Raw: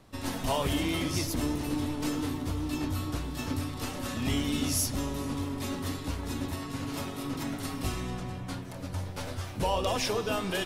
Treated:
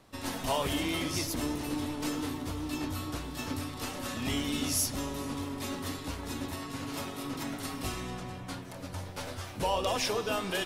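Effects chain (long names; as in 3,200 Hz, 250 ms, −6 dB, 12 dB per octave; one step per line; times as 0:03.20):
low-shelf EQ 240 Hz −6.5 dB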